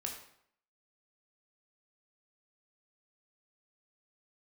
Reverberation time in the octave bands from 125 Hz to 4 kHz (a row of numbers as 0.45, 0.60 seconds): 0.65, 0.65, 0.65, 0.70, 0.60, 0.55 seconds